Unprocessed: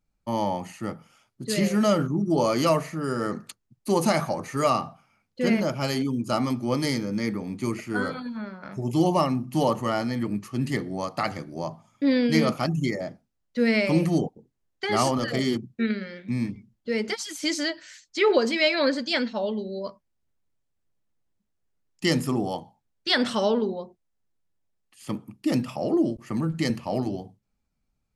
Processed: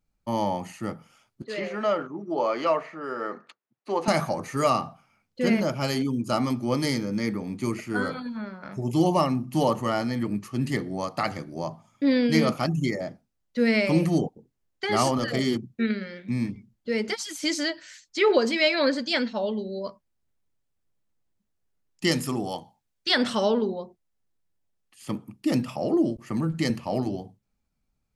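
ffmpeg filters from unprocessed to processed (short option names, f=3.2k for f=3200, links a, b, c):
-filter_complex "[0:a]asettb=1/sr,asplit=3[a][b][c];[a]atrim=end=1.424[d];[b]atrim=start=1.42:end=4.08,asetpts=PTS-STARTPTS,afade=t=in:d=0.004:c=qsin,afade=t=out:st=2.656:d=0.004:c=qsin,highpass=460,lowpass=2.5k[e];[c]atrim=start=4.076[f];[d][e]acrossfade=d=0.004:c1=hsin:c2=qsin[g];[g][f]acrossfade=d=0.004:c1=qsin:c2=hsin,asettb=1/sr,asplit=3[h][i][j];[h]atrim=end=22.114[k];[i]atrim=start=22.11:end=23.09,asetpts=PTS-STARTPTS,afade=t=in:d=0.004:c=qsin,afade=t=out:st=0.976:d=0.004:c=qsin,tiltshelf=f=1.4k:g=-3.5[l];[j]atrim=start=23.086[m];[k][l]acrossfade=d=0.004:c1=hsin:c2=qsin[n];[n][m]acrossfade=d=0.004:c1=qsin:c2=hsin"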